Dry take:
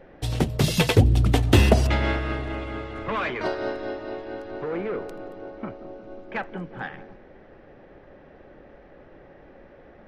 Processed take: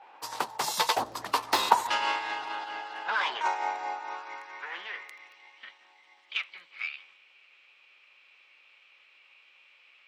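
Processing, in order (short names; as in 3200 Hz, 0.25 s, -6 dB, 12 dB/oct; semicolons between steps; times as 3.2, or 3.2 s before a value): high-pass sweep 690 Hz -> 1800 Hz, 3.93–5.38; formant shift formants +6 st; gain -4 dB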